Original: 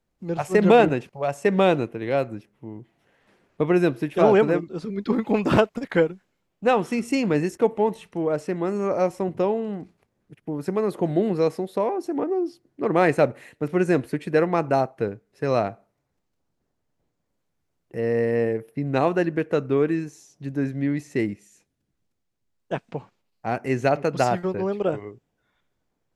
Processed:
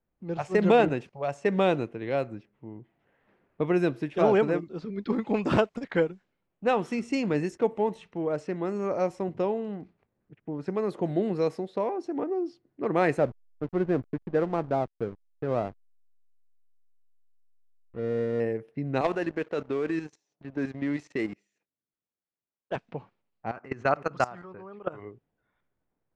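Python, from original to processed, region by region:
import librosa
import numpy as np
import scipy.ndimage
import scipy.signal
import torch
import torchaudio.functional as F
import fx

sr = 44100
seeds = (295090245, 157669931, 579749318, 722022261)

y = fx.chain(x, sr, fx.gaussian_blur(sigma=4.8),
    fx.backlash(play_db=-29.5), at=(13.18, 18.4))
y = fx.chain(y, sr, fx.highpass(hz=380.0, slope=6),
    fx.level_steps(step_db=10),
    fx.leveller(passes=2), at=(19.01, 22.76))
y = fx.chain(y, sr, fx.level_steps(step_db=20),
    fx.peak_eq(hz=1200.0, db=12.5, octaves=0.79),
    fx.notch(hz=3500.0, q=28.0), at=(23.51, 25.0))
y = fx.env_lowpass(y, sr, base_hz=2200.0, full_db=-18.0)
y = scipy.signal.sosfilt(scipy.signal.butter(2, 8300.0, 'lowpass', fs=sr, output='sos'), y)
y = y * 10.0 ** (-5.0 / 20.0)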